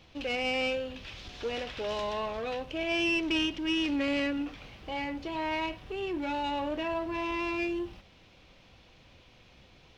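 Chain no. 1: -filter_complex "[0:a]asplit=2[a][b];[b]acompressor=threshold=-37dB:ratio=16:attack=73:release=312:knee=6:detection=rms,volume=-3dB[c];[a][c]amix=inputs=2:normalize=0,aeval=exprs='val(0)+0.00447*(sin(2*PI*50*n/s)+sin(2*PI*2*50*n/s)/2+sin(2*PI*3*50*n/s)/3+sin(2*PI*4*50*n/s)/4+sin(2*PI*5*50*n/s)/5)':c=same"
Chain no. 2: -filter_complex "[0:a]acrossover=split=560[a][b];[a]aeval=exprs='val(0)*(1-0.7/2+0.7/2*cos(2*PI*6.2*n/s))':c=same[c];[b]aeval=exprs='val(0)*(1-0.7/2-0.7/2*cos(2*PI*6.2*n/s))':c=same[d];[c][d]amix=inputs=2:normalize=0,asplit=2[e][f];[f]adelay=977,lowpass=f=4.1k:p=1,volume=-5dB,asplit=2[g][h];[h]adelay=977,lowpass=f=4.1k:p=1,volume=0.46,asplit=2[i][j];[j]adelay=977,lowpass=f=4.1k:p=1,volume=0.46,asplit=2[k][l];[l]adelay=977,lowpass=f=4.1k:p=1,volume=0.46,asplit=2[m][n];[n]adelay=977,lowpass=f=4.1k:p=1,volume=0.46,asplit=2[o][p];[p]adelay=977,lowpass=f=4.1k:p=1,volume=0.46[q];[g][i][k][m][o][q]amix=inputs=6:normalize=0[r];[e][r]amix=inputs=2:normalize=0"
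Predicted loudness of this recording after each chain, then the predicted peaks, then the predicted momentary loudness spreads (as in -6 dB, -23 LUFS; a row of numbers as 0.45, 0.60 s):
-29.5, -34.5 LUFS; -17.5, -20.0 dBFS; 23, 12 LU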